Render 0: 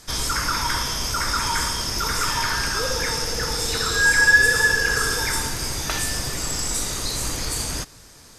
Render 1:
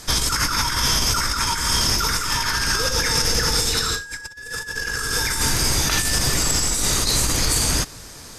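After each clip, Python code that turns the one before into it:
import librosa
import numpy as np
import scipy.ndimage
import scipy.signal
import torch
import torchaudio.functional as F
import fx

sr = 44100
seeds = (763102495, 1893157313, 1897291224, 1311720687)

y = fx.dynamic_eq(x, sr, hz=620.0, q=0.81, threshold_db=-36.0, ratio=4.0, max_db=-5)
y = fx.over_compress(y, sr, threshold_db=-26.0, ratio=-0.5)
y = y * librosa.db_to_amplitude(5.0)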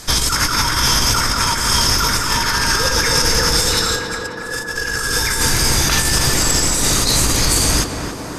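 y = fx.echo_tape(x, sr, ms=276, feedback_pct=83, wet_db=-4.0, lp_hz=1700.0, drive_db=3.0, wow_cents=15)
y = y * librosa.db_to_amplitude(4.0)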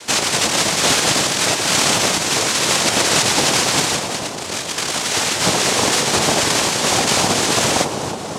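y = fx.octave_divider(x, sr, octaves=1, level_db=3.0)
y = fx.noise_vocoder(y, sr, seeds[0], bands=2)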